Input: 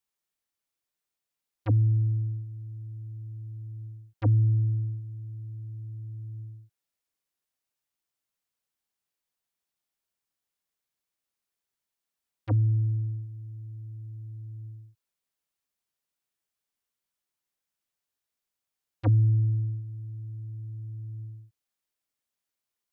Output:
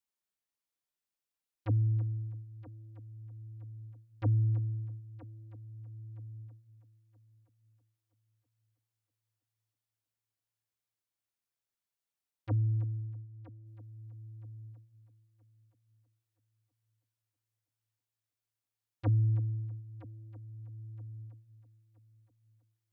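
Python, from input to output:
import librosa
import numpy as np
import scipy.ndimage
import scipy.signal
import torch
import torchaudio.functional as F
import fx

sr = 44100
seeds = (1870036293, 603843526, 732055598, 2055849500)

y = fx.lowpass(x, sr, hz=1200.0, slope=12, at=(13.0, 13.65), fade=0.02)
y = fx.echo_heads(y, sr, ms=323, heads='first and third', feedback_pct=45, wet_db=-16.5)
y = F.gain(torch.from_numpy(y), -6.0).numpy()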